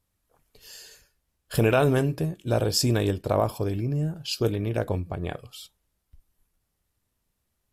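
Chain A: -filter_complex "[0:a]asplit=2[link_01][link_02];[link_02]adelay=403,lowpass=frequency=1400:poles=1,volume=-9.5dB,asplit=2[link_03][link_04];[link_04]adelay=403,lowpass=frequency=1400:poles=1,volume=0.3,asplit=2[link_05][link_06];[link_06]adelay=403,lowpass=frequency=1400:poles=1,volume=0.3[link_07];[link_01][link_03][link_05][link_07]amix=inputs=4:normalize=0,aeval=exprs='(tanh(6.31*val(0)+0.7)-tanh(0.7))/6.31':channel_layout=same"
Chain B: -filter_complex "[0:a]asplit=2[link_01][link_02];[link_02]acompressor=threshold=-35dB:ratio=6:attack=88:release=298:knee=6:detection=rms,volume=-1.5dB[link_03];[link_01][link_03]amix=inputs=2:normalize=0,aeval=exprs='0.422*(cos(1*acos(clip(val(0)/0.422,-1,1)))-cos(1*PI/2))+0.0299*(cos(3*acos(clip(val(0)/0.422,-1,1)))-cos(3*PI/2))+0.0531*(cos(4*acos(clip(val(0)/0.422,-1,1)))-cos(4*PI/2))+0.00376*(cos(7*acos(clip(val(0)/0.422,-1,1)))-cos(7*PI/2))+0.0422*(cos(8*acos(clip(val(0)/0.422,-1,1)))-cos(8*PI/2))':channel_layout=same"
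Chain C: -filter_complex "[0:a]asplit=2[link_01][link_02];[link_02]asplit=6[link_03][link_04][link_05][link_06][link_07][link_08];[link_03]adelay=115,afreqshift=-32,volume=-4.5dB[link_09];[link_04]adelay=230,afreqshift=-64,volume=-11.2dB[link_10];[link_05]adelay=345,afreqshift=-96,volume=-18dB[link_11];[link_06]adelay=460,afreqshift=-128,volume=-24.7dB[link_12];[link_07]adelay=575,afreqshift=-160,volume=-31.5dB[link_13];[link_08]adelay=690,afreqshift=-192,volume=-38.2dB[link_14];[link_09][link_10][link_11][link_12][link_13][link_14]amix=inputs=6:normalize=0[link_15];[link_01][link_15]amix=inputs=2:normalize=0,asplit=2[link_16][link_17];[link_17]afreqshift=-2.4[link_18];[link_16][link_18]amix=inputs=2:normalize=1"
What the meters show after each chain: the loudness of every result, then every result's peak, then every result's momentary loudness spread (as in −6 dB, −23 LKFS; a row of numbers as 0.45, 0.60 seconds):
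−29.0, −24.0, −27.5 LKFS; −12.5, −5.5, −10.0 dBFS; 17, 21, 19 LU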